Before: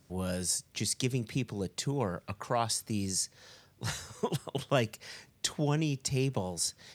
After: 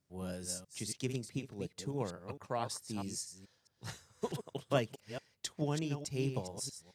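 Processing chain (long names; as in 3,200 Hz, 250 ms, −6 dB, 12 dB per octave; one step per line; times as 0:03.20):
delay that plays each chunk backwards 216 ms, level −6.5 dB
dynamic equaliser 380 Hz, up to +3 dB, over −41 dBFS, Q 0.71
expander for the loud parts 1.5 to 1, over −47 dBFS
level −5 dB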